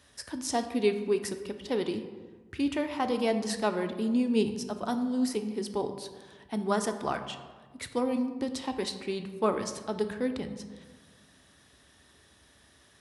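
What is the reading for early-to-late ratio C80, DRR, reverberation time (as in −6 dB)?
11.5 dB, 7.0 dB, 1.4 s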